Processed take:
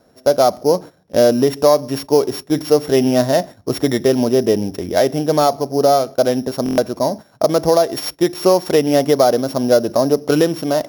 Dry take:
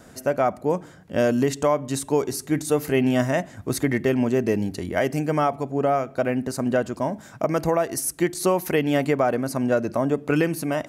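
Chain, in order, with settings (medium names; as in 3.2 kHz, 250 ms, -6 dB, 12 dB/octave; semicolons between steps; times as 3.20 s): sorted samples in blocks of 8 samples; peaking EQ 550 Hz +8.5 dB 1.7 oct; gate -30 dBFS, range -12 dB; buffer glitch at 6.64 s, samples 1024, times 5; trim +1.5 dB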